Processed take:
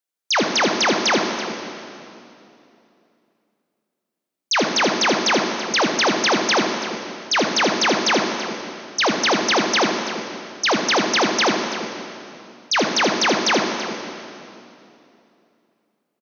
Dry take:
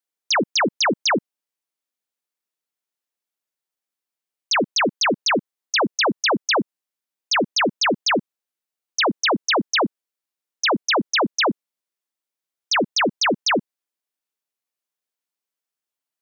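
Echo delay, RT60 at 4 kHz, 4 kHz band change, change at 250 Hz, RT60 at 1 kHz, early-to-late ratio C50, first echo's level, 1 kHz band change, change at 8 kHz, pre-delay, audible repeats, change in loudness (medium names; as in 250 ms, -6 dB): 79 ms, 2.4 s, +2.0 dB, +2.0 dB, 2.6 s, 2.5 dB, -9.5 dB, +2.5 dB, no reading, 12 ms, 2, +1.5 dB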